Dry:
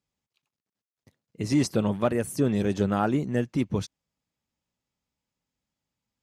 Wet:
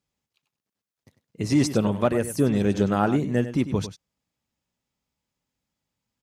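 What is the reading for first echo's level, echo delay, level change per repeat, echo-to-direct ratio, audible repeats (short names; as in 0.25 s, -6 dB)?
-12.0 dB, 98 ms, no steady repeat, -12.0 dB, 1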